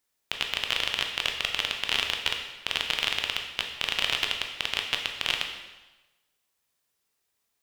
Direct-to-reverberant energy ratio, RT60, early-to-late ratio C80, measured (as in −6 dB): 2.5 dB, 1.1 s, 7.5 dB